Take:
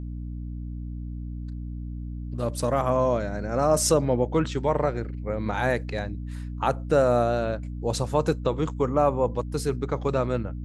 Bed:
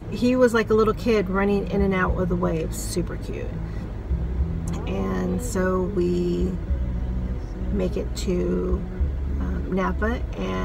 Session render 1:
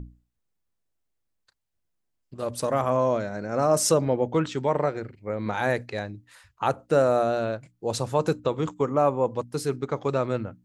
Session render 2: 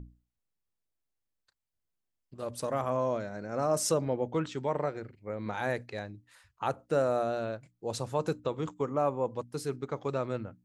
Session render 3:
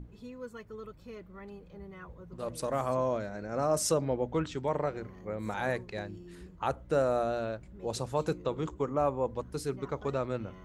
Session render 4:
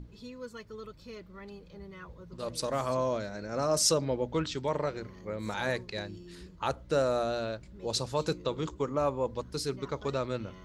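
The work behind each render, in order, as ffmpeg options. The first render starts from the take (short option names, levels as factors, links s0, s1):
-af "bandreject=f=60:t=h:w=6,bandreject=f=120:t=h:w=6,bandreject=f=180:t=h:w=6,bandreject=f=240:t=h:w=6,bandreject=f=300:t=h:w=6"
-af "volume=0.447"
-filter_complex "[1:a]volume=0.0531[s0];[0:a][s0]amix=inputs=2:normalize=0"
-af "equalizer=f=4600:w=1.1:g=11,bandreject=f=750:w=12"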